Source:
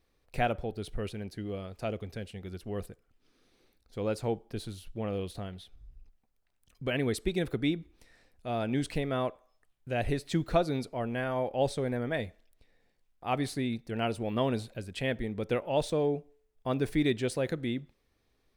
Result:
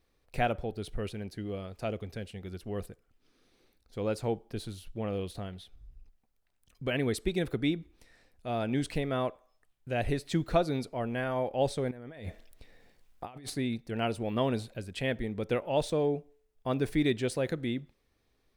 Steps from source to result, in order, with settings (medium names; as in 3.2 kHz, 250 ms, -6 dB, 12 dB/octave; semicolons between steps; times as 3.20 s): 11.91–13.50 s: compressor with a negative ratio -44 dBFS, ratio -1